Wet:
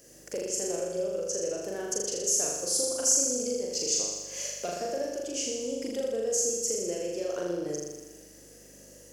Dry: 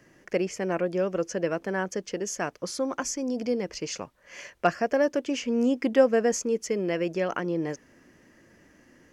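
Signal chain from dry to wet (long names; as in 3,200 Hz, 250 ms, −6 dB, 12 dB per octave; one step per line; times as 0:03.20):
soft clipping −13.5 dBFS, distortion −19 dB
octave-band graphic EQ 125/500/1,000/2,000/8,000 Hz +5/+11/−9/−9/+7 dB
downward compressor 3 to 1, threshold −32 dBFS, peak gain reduction 16.5 dB
mains hum 50 Hz, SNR 24 dB
RIAA equalisation recording
on a send: flutter between parallel walls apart 6.9 metres, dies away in 1.2 s
on the sum: level −1.5 dB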